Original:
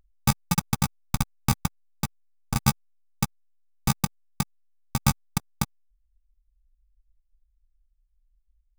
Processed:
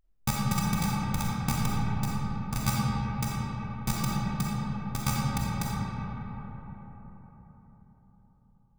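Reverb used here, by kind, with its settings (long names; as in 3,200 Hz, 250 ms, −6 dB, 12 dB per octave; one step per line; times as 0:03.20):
comb and all-pass reverb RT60 4.8 s, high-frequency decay 0.35×, pre-delay 5 ms, DRR −6 dB
level −7.5 dB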